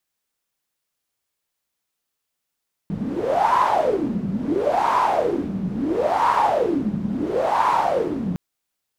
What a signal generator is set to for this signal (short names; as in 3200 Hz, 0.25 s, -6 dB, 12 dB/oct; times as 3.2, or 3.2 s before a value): wind-like swept noise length 5.46 s, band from 190 Hz, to 1000 Hz, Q 8.9, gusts 4, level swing 6.5 dB